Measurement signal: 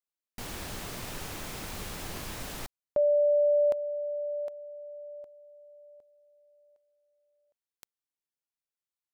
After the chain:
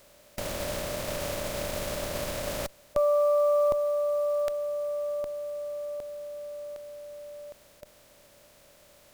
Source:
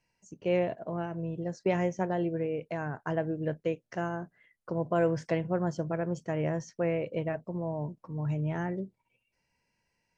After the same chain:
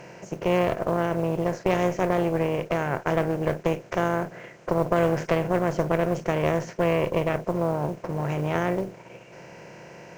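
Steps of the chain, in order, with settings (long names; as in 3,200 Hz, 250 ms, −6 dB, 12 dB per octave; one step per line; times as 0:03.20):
compressor on every frequency bin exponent 0.4
harmonic generator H 4 −12 dB, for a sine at −8 dBFS
noise that follows the level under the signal 31 dB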